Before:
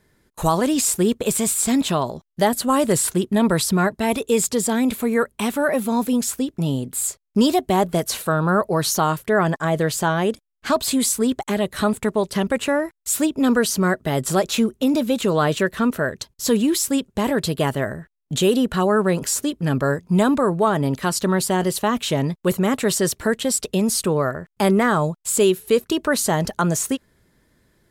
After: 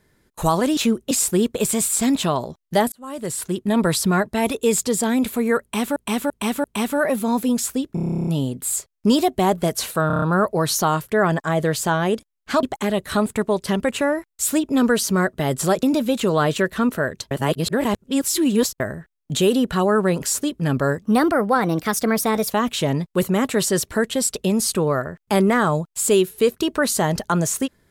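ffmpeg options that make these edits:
-filter_complex "[0:a]asplit=29[s0][s1][s2][s3][s4][s5][s6][s7][s8][s9][s10][s11][s12][s13][s14][s15][s16][s17][s18][s19][s20][s21][s22][s23][s24][s25][s26][s27][s28];[s0]atrim=end=0.772[s29];[s1]atrim=start=14.498:end=14.842[s30];[s2]atrim=start=0.768:end=2.58,asetpts=PTS-STARTPTS,afade=t=out:st=1.808:d=0.004:c=hsin[s31];[s3]atrim=start=2.58:end=5.622,asetpts=PTS-STARTPTS,afade=t=in:d=0.96[s32];[s4]atrim=start=5.278:end=5.622[s33];[s5]atrim=start=5.278:end=5.622[s34];[s6]atrim=start=5.278:end=6.612[s35];[s7]atrim=start=6.578:end=6.612[s36];[s8]atrim=start=6.578:end=6.612[s37];[s9]atrim=start=6.578:end=6.612[s38];[s10]atrim=start=6.578:end=6.612[s39];[s11]atrim=start=6.578:end=6.612[s40];[s12]atrim=start=6.578:end=6.612[s41];[s13]atrim=start=6.578:end=6.612[s42];[s14]atrim=start=6.578:end=6.612[s43];[s15]atrim=start=6.578:end=6.612[s44];[s16]atrim=start=6.578:end=6.612[s45];[s17]atrim=start=6.578:end=8.412[s46];[s18]atrim=start=8.378:end=8.412[s47];[s19]atrim=start=8.378:end=8.412[s48];[s20]atrim=start=8.378:end=8.412[s49];[s21]atrim=start=8.378:end=8.412[s50];[s22]atrim=start=8.378:end=10.792[s51];[s23]atrim=start=11.298:end=14.502[s52];[s24]atrim=start=14.838:end=16.322[s53];[s25]atrim=start=16.318:end=17.812,asetpts=PTS-STARTPTS,areverse[s54];[s26]atrim=start=17.808:end=20.034[s55];[s27]atrim=start=20.03:end=21.8,asetpts=PTS-STARTPTS,asetrate=52479,aresample=44100,atrim=end_sample=65594,asetpts=PTS-STARTPTS[s56];[s28]atrim=start=21.796[s57];[s29][s30]acrossfade=d=0.004:c1=hsin:c2=hsin[s58];[s31][s32]concat=n=2:v=0:a=1[s59];[s58][s59]acrossfade=d=0.004:c1=hsin:c2=hsin[s60];[s60][s33]acrossfade=d=0.004:c1=hsin:c2=hsin[s61];[s61][s34]acrossfade=d=0.004:c1=hsin:c2=hsin[s62];[s62][s35]acrossfade=d=0.004:c1=hsin:c2=hsin[s63];[s63][s36]acrossfade=d=0.004:c1=hsin:c2=hsin[s64];[s64][s37]acrossfade=d=0.004:c1=hsin:c2=hsin[s65];[s65][s38]acrossfade=d=0.004:c1=hsin:c2=hsin[s66];[s66][s39]acrossfade=d=0.004:c1=hsin:c2=hsin[s67];[s67][s40]acrossfade=d=0.004:c1=hsin:c2=hsin[s68];[s68][s41]acrossfade=d=0.004:c1=hsin:c2=hsin[s69];[s69][s42]acrossfade=d=0.004:c1=hsin:c2=hsin[s70];[s70][s43]acrossfade=d=0.004:c1=hsin:c2=hsin[s71];[s71][s44]acrossfade=d=0.004:c1=hsin:c2=hsin[s72];[s72][s45]acrossfade=d=0.004:c1=hsin:c2=hsin[s73];[s73][s46]acrossfade=d=0.004:c1=hsin:c2=hsin[s74];[s74][s47]acrossfade=d=0.004:c1=hsin:c2=hsin[s75];[s75][s48]acrossfade=d=0.004:c1=hsin:c2=hsin[s76];[s76][s49]acrossfade=d=0.004:c1=hsin:c2=hsin[s77];[s77][s50]acrossfade=d=0.004:c1=hsin:c2=hsin[s78];[s78][s51]acrossfade=d=0.004:c1=hsin:c2=hsin[s79];[s79][s52]acrossfade=d=0.004:c1=hsin:c2=hsin[s80];[s80][s53]acrossfade=d=0.004:c1=hsin:c2=hsin[s81];[s81][s54]acrossfade=d=0.004:c1=hsin:c2=hsin[s82];[s82][s55]acrossfade=d=0.004:c1=hsin:c2=hsin[s83];[s83][s56]acrossfade=d=0.004:c1=hsin:c2=hsin[s84];[s84][s57]acrossfade=d=0.004:c1=hsin:c2=hsin"

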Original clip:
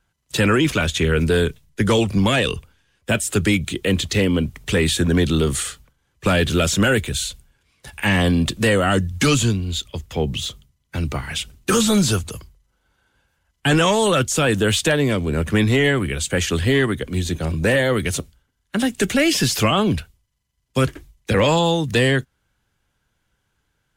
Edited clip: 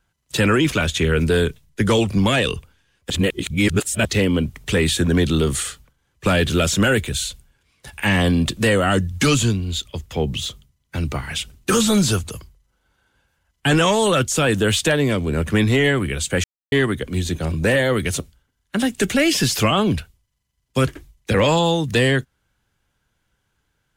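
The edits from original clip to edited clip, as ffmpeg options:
-filter_complex "[0:a]asplit=5[s0][s1][s2][s3][s4];[s0]atrim=end=3.102[s5];[s1]atrim=start=3.098:end=4.052,asetpts=PTS-STARTPTS,areverse[s6];[s2]atrim=start=4.048:end=16.44,asetpts=PTS-STARTPTS,afade=t=out:st=12.388:d=0.004:c=hsin[s7];[s3]atrim=start=16.44:end=16.72,asetpts=PTS-STARTPTS,volume=0[s8];[s4]atrim=start=16.72,asetpts=PTS-STARTPTS,afade=t=in:d=0.004:c=hsin[s9];[s5][s6]acrossfade=d=0.004:c1=hsin:c2=hsin[s10];[s7][s8][s9]concat=n=3:v=0:a=1[s11];[s10][s11]acrossfade=d=0.004:c1=hsin:c2=hsin"

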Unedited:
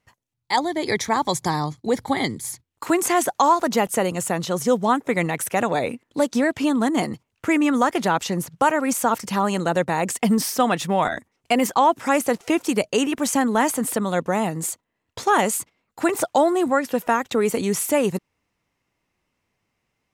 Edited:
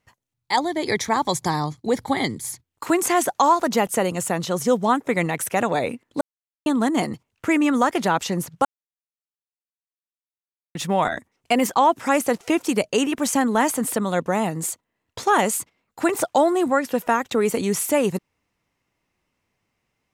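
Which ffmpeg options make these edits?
-filter_complex "[0:a]asplit=5[s0][s1][s2][s3][s4];[s0]atrim=end=6.21,asetpts=PTS-STARTPTS,afade=t=out:st=6.206:d=0.004:c=hsin[s5];[s1]atrim=start=6.21:end=6.66,asetpts=PTS-STARTPTS,volume=0[s6];[s2]atrim=start=6.66:end=8.65,asetpts=PTS-STARTPTS,afade=t=in:d=0.004:c=hsin,afade=t=out:st=1.986:d=0.004:c=hsin[s7];[s3]atrim=start=8.65:end=10.75,asetpts=PTS-STARTPTS,volume=0[s8];[s4]atrim=start=10.75,asetpts=PTS-STARTPTS,afade=t=in:d=0.004:c=hsin[s9];[s5][s6][s7][s8][s9]concat=n=5:v=0:a=1"

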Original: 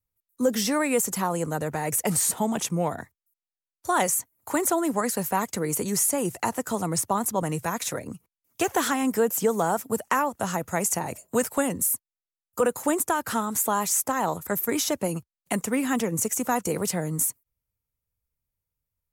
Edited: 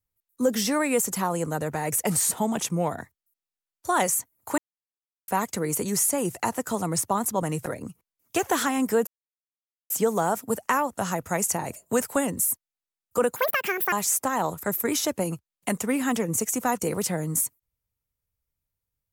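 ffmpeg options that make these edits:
-filter_complex "[0:a]asplit=7[s0][s1][s2][s3][s4][s5][s6];[s0]atrim=end=4.58,asetpts=PTS-STARTPTS,afade=t=out:st=4.576:d=0.004:c=hsin[s7];[s1]atrim=start=4.58:end=5.28,asetpts=PTS-STARTPTS,volume=0[s8];[s2]atrim=start=5.28:end=7.662,asetpts=PTS-STARTPTS,afade=t=in:d=0.004:c=hsin[s9];[s3]atrim=start=7.908:end=9.32,asetpts=PTS-STARTPTS,afade=t=out:st=1.408:d=0.004:c=hsin,apad=pad_dur=0.83[s10];[s4]atrim=start=9.32:end=12.784,asetpts=PTS-STARTPTS,afade=t=in:d=0.004:c=hsin[s11];[s5]atrim=start=12.78:end=13.76,asetpts=PTS-STARTPTS,asetrate=76734,aresample=44100[s12];[s6]atrim=start=13.756[s13];[s7][s8][s9]concat=n=3:v=0:a=1[s14];[s10][s11]concat=n=2:v=0:a=1[s15];[s14][s15]acrossfade=d=0.004:c1=hsin:c2=hsin[s16];[s16][s12]acrossfade=d=0.004:c1=hsin:c2=hsin[s17];[s17][s13]acrossfade=d=0.004:c1=hsin:c2=hsin"

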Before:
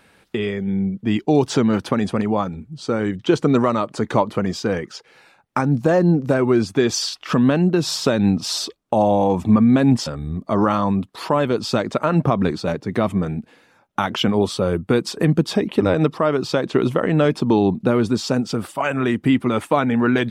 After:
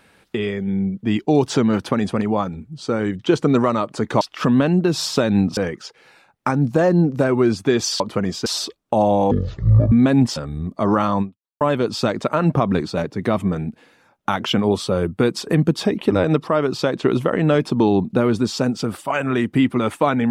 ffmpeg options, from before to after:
-filter_complex "[0:a]asplit=8[s0][s1][s2][s3][s4][s5][s6][s7];[s0]atrim=end=4.212[s8];[s1]atrim=start=7.098:end=8.462[s9];[s2]atrim=start=4.668:end=7.102[s10];[s3]atrim=start=4.208:end=4.672[s11];[s4]atrim=start=8.458:end=9.314[s12];[s5]atrim=start=9.31:end=9.62,asetpts=PTS-STARTPTS,asetrate=22491,aresample=44100[s13];[s6]atrim=start=9.616:end=11.31,asetpts=PTS-STARTPTS,afade=t=out:st=1.304:d=0.39:c=exp[s14];[s7]atrim=start=11.31,asetpts=PTS-STARTPTS,afade=t=in:d=0.004:c=hsin[s15];[s8][s9]acrossfade=d=0.004:c1=hsin:c2=hsin[s16];[s16][s10]acrossfade=d=0.004:c1=hsin:c2=hsin[s17];[s17][s11]acrossfade=d=0.004:c1=hsin:c2=hsin[s18];[s18][s12]acrossfade=d=0.004:c1=hsin:c2=hsin[s19];[s19][s13]acrossfade=d=0.004:c1=hsin:c2=hsin[s20];[s14][s15]concat=n=2:v=0:a=1[s21];[s20][s21]acrossfade=d=0.004:c1=hsin:c2=hsin"

